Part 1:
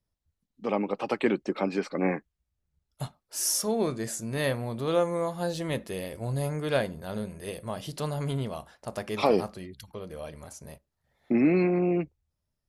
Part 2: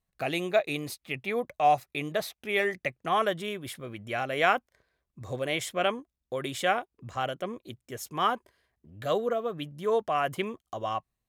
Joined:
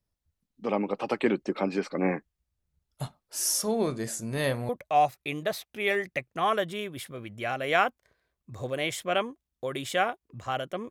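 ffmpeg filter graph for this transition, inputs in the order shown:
ffmpeg -i cue0.wav -i cue1.wav -filter_complex "[0:a]apad=whole_dur=10.9,atrim=end=10.9,atrim=end=4.692[link_01];[1:a]atrim=start=1.378:end=7.59[link_02];[link_01][link_02]acrossfade=duration=0.004:curve1=hsin:curve2=hsin" out.wav

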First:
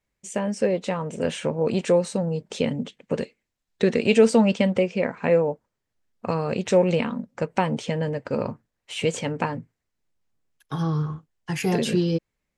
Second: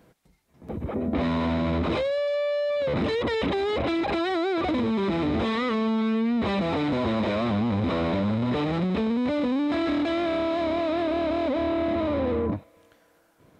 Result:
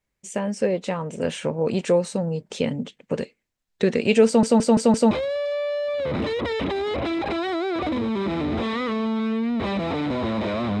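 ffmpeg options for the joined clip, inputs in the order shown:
ffmpeg -i cue0.wav -i cue1.wav -filter_complex "[0:a]apad=whole_dur=10.8,atrim=end=10.8,asplit=5[link_01][link_02][link_03][link_04][link_05];[link_01]atrim=end=4.432[link_06];[link_02]atrim=start=4.258:end=4.432[link_07];[link_03]atrim=start=4.258:end=4.432[link_08];[link_04]atrim=start=4.258:end=4.432[link_09];[link_05]atrim=start=4.258:end=4.432[link_10];[1:a]atrim=start=1.928:end=7.62[link_11];[link_06][link_07]acrossfade=duration=0.004:curve1=hsin:curve2=hsin[link_12];[link_12][link_08]acrossfade=duration=0.004:curve1=hsin:curve2=hsin[link_13];[link_13][link_09]acrossfade=duration=0.004:curve1=hsin:curve2=hsin[link_14];[link_14][link_10]acrossfade=duration=0.004:curve1=hsin:curve2=hsin[link_15];[link_15][link_11]acrossfade=duration=0.004:curve1=hsin:curve2=hsin" out.wav

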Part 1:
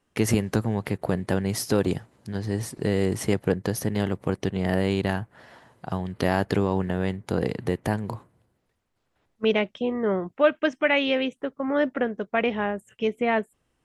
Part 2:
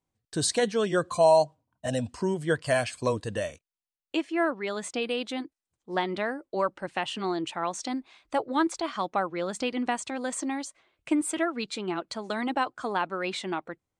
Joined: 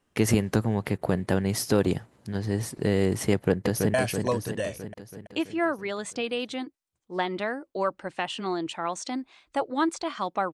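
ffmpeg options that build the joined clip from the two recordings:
ffmpeg -i cue0.wav -i cue1.wav -filter_complex "[0:a]apad=whole_dur=10.53,atrim=end=10.53,atrim=end=3.942[link_01];[1:a]atrim=start=2.718:end=9.31[link_02];[link_01][link_02]acrossfade=duration=0.004:curve1=hsin:curve2=hsin,asplit=2[link_03][link_04];[link_04]afade=type=in:start_time=3.32:duration=0.01,afade=type=out:start_time=3.94:duration=0.01,aecho=0:1:330|660|990|1320|1650|1980|2310|2640:0.562341|0.337405|0.202443|0.121466|0.0728794|0.0437277|0.0262366|0.015742[link_05];[link_03][link_05]amix=inputs=2:normalize=0" out.wav

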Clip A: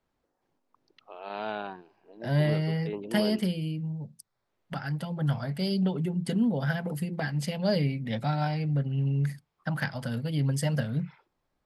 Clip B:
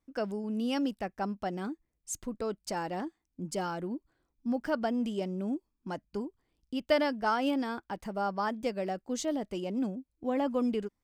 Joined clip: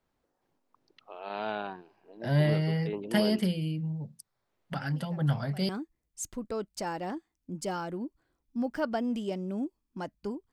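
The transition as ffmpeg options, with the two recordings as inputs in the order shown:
ffmpeg -i cue0.wav -i cue1.wav -filter_complex "[1:a]asplit=2[link_01][link_02];[0:a]apad=whole_dur=10.52,atrim=end=10.52,atrim=end=5.692[link_03];[link_02]atrim=start=1.588:end=6.42[link_04];[link_01]atrim=start=0.71:end=1.59,asetpts=PTS-STARTPTS,volume=-17.5dB,afade=type=in:duration=0.004:curve=hsin,afade=type=out:start_time=0.876:duration=0.004:curve=hsin,adelay=212121S[link_05];[link_03][link_04]acrossfade=duration=0.004:curve1=hsin:curve2=hsin[link_06];[link_06][link_05]amix=inputs=2:normalize=0" out.wav

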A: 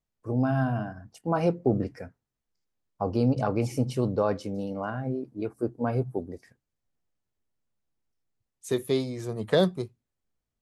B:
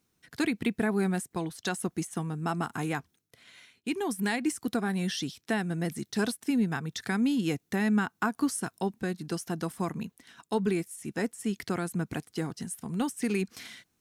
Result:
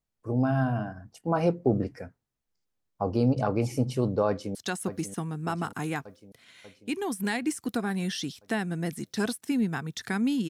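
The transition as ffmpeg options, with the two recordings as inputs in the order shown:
ffmpeg -i cue0.wav -i cue1.wav -filter_complex "[0:a]apad=whole_dur=10.49,atrim=end=10.49,atrim=end=4.552[link_01];[1:a]atrim=start=1.538:end=7.48[link_02];[link_01][link_02]acrossfade=duration=0.004:curve1=hsin:curve2=hsin,asplit=2[link_03][link_04];[link_04]afade=type=in:start_time=4.28:duration=0.01,afade=type=out:start_time=4.55:duration=0.01,aecho=0:1:590|1180|1770|2360|2950|3540|4130|4720:0.298538|0.19405|0.126132|0.0819861|0.0532909|0.0346391|0.0225154|0.014635[link_05];[link_03][link_05]amix=inputs=2:normalize=0" out.wav

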